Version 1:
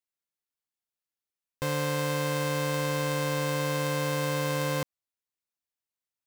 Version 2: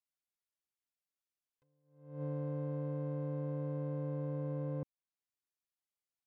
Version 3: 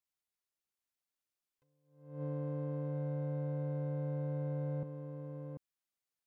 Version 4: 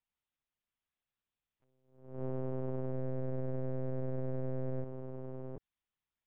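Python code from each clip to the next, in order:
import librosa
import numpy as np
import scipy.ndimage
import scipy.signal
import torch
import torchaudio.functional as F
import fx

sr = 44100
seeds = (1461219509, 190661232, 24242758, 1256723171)

y1 = fx.env_lowpass_down(x, sr, base_hz=430.0, full_db=-30.0)
y1 = fx.attack_slew(y1, sr, db_per_s=100.0)
y1 = y1 * librosa.db_to_amplitude(-6.0)
y2 = y1 + 10.0 ** (-6.5 / 20.0) * np.pad(y1, (int(741 * sr / 1000.0), 0))[:len(y1)]
y3 = fx.lpc_monotone(y2, sr, seeds[0], pitch_hz=130.0, order=8)
y3 = y3 * librosa.db_to_amplitude(2.0)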